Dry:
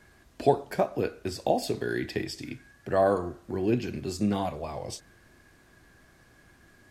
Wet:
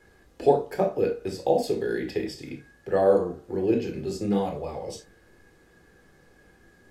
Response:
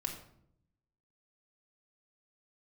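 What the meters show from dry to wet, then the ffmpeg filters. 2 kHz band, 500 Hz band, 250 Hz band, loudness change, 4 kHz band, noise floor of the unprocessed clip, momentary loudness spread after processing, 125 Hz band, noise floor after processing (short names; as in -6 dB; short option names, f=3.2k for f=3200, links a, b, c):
-2.0 dB, +4.5 dB, +1.5 dB, +3.0 dB, -2.0 dB, -59 dBFS, 15 LU, -1.0 dB, -58 dBFS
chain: -filter_complex "[0:a]equalizer=f=520:t=o:w=0.95:g=7.5[a];[1:a]atrim=start_sample=2205,afade=t=out:st=0.16:d=0.01,atrim=end_sample=7497,asetrate=61740,aresample=44100[b];[a][b]afir=irnorm=-1:irlink=0"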